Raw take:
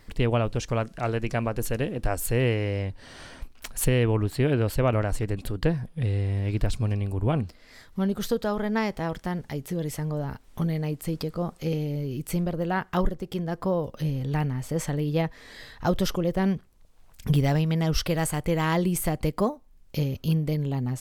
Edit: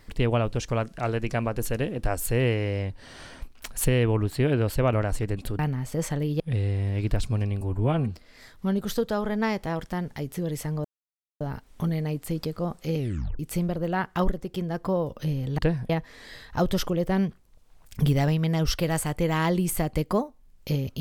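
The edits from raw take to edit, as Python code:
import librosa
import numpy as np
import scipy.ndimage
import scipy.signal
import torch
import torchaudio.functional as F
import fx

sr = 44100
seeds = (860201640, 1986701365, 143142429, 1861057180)

y = fx.edit(x, sr, fx.swap(start_s=5.59, length_s=0.31, other_s=14.36, other_length_s=0.81),
    fx.stretch_span(start_s=7.11, length_s=0.33, factor=1.5),
    fx.insert_silence(at_s=10.18, length_s=0.56),
    fx.tape_stop(start_s=11.75, length_s=0.42), tone=tone)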